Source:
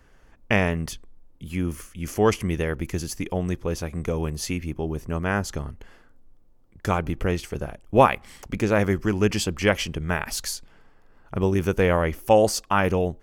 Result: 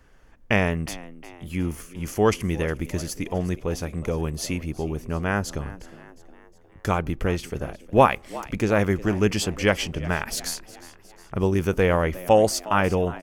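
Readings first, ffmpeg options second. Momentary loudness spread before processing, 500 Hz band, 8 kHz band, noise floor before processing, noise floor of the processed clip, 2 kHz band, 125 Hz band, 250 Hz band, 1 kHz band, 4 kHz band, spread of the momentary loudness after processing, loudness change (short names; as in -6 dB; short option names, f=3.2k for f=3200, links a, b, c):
14 LU, 0.0 dB, 0.0 dB, -54 dBFS, -52 dBFS, 0.0 dB, 0.0 dB, 0.0 dB, 0.0 dB, 0.0 dB, 14 LU, 0.0 dB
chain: -filter_complex "[0:a]asplit=5[a][b][c][d][e];[b]adelay=360,afreqshift=85,volume=-18.5dB[f];[c]adelay=720,afreqshift=170,volume=-24.5dB[g];[d]adelay=1080,afreqshift=255,volume=-30.5dB[h];[e]adelay=1440,afreqshift=340,volume=-36.6dB[i];[a][f][g][h][i]amix=inputs=5:normalize=0"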